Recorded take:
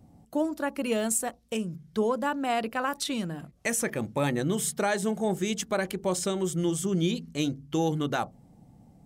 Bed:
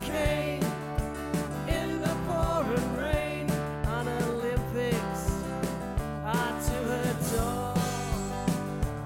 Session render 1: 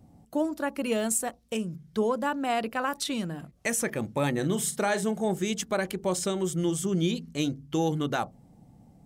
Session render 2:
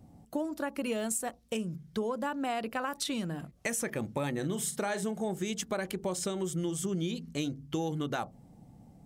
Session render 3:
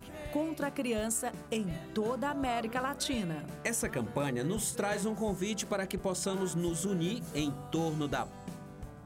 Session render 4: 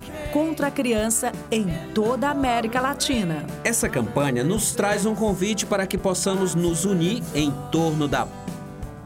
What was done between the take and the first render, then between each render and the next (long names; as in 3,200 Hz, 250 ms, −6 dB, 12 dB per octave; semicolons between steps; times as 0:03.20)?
0:04.33–0:05.04: double-tracking delay 44 ms −12 dB
downward compressor 4 to 1, threshold −30 dBFS, peak gain reduction 8 dB
mix in bed −15.5 dB
level +11 dB